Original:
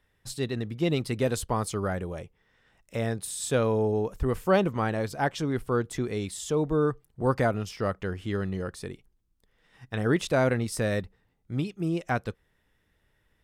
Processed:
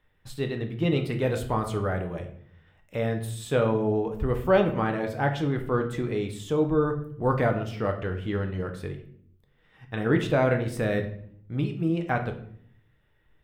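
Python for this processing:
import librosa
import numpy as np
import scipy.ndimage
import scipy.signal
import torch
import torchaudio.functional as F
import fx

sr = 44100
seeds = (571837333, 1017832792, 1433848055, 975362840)

y = fx.band_shelf(x, sr, hz=7300.0, db=-10.5, octaves=1.7)
y = fx.room_shoebox(y, sr, seeds[0], volume_m3=100.0, walls='mixed', distance_m=0.5)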